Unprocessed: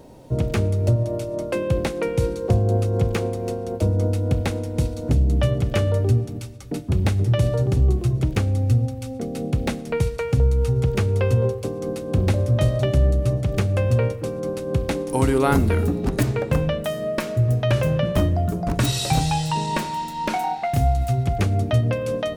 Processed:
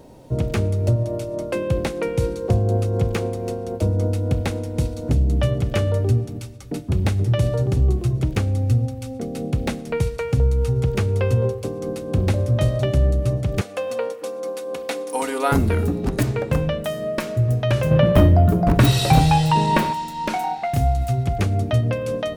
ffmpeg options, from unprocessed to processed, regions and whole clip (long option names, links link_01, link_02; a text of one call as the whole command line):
ffmpeg -i in.wav -filter_complex "[0:a]asettb=1/sr,asplit=3[link_01][link_02][link_03];[link_01]atrim=end=13.614[link_04];[link_02]atrim=start=13.61:end=15.52,asetpts=PTS-STARTPTS,afade=type=in:duration=0.004:curve=qsin,afade=type=out:start_time=1.906:duration=0.004:curve=qsin,highpass=520,aecho=1:1:4.1:0.68,atrim=end_sample=84231[link_05];[link_03]atrim=start=15.516[link_06];[link_04][link_05]acrossfade=duration=0.004:curve1=hsin:curve2=qsin[link_07];[link_07][link_06]acrossfade=duration=0.004:curve1=qsin:curve2=hsin,asettb=1/sr,asplit=3[link_08][link_09][link_10];[link_08]atrim=end=17.914[link_11];[link_09]atrim=start=17.91:end=19.93,asetpts=PTS-STARTPTS,afade=type=in:duration=0.004:curve=qsin,afade=type=out:start_time=2.016:duration=0.004:curve=qsin,equalizer=frequency=7000:width=0.74:gain=-9.5,acontrast=83,aecho=1:1:68|136|204|272:0.0944|0.0491|0.0255|0.0133,atrim=end_sample=89082[link_12];[link_10]atrim=start=19.926[link_13];[link_11][link_12]acrossfade=duration=0.004:curve1=hsin:curve2=qsin[link_14];[link_14][link_13]acrossfade=duration=0.004:curve1=qsin:curve2=hsin" out.wav